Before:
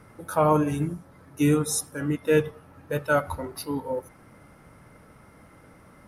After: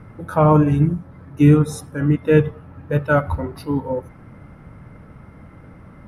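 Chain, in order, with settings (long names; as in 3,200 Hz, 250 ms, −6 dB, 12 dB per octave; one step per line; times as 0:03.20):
bass and treble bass +9 dB, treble −14 dB
level +4.5 dB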